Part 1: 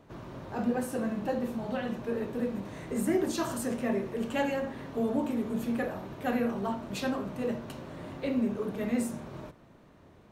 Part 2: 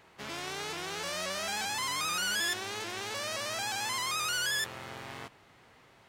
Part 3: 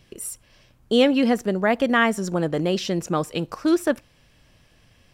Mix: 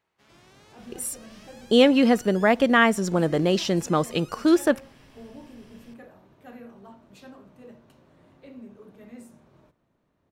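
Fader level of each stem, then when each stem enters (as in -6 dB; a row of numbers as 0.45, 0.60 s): -15.0, -19.0, +1.0 dB; 0.20, 0.00, 0.80 s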